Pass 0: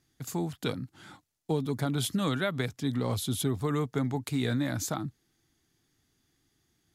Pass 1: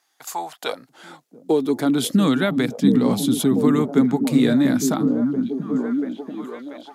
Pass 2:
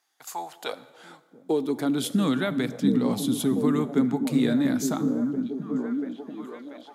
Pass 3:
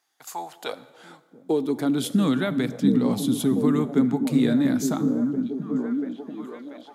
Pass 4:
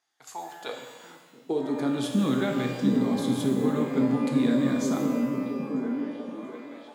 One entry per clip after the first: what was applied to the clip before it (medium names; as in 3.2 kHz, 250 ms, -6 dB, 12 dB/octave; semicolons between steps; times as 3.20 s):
high-pass sweep 820 Hz -> 220 Hz, 0.36–2.19 s; repeats whose band climbs or falls 686 ms, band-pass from 190 Hz, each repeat 0.7 oct, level -1.5 dB; trim +7 dB
plate-style reverb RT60 1.6 s, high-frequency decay 0.7×, DRR 14.5 dB; trim -6 dB
bass shelf 350 Hz +3.5 dB
low-pass 8.5 kHz 12 dB/octave; pitch-shifted reverb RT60 1.2 s, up +12 st, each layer -8 dB, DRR 3 dB; trim -5 dB